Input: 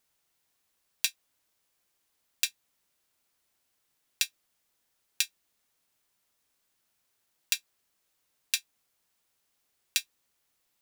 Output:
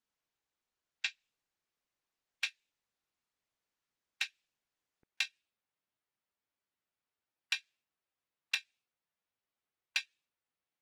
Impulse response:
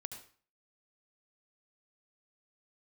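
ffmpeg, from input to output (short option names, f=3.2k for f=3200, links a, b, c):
-filter_complex "[0:a]highpass=50,afftdn=nr=22:nf=-56,lowpass=2.8k,acrossover=split=520|910[a][b][c];[c]alimiter=level_in=2.5dB:limit=-24dB:level=0:latency=1:release=80,volume=-2.5dB[d];[a][b][d]amix=inputs=3:normalize=0,volume=30.5dB,asoftclip=hard,volume=-30.5dB,volume=10.5dB" -ar 48000 -c:a libopus -b:a 16k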